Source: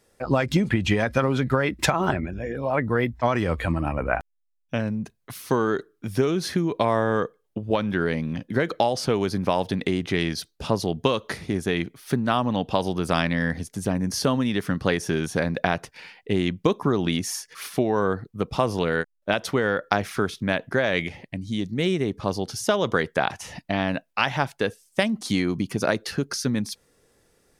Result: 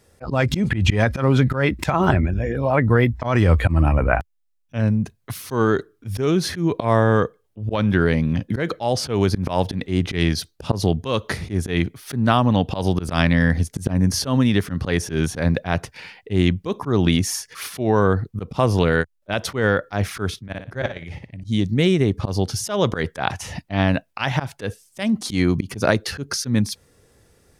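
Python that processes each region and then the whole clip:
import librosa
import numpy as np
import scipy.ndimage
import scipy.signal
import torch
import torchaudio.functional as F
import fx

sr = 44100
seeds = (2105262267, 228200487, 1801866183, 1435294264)

y = fx.chain(x, sr, fx.peak_eq(hz=120.0, db=6.0, octaves=0.43),
    fx.level_steps(step_db=22),
    fx.room_flutter(wall_m=10.1, rt60_s=0.32), at=(20.39, 21.44))
y = fx.peak_eq(y, sr, hz=83.0, db=10.5, octaves=1.4)
y = fx.auto_swell(y, sr, attack_ms=113.0)
y = y * 10.0 ** (4.5 / 20.0)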